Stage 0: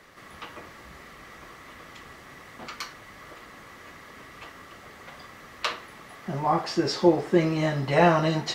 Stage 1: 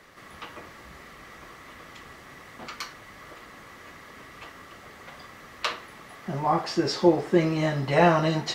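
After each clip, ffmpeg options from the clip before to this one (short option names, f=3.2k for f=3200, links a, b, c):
-af anull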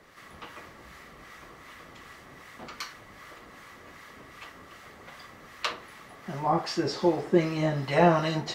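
-filter_complex "[0:a]acrossover=split=950[a][b];[a]aeval=exprs='val(0)*(1-0.5/2+0.5/2*cos(2*PI*2.6*n/s))':c=same[c];[b]aeval=exprs='val(0)*(1-0.5/2-0.5/2*cos(2*PI*2.6*n/s))':c=same[d];[c][d]amix=inputs=2:normalize=0"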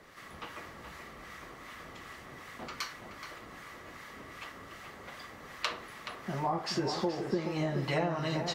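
-filter_complex "[0:a]acompressor=threshold=-28dB:ratio=10,asplit=2[a][b];[b]adelay=425.7,volume=-7dB,highshelf=f=4k:g=-9.58[c];[a][c]amix=inputs=2:normalize=0"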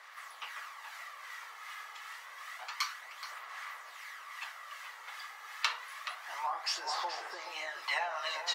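-af "highpass=f=870:w=0.5412,highpass=f=870:w=1.3066,aphaser=in_gain=1:out_gain=1:delay=2.4:decay=0.37:speed=0.28:type=sinusoidal,volume=2dB"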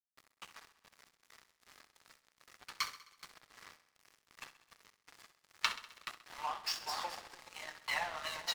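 -af "aeval=exprs='sgn(val(0))*max(abs(val(0))-0.00891,0)':c=same,aecho=1:1:65|130|195|260|325|390:0.2|0.118|0.0695|0.041|0.0242|0.0143"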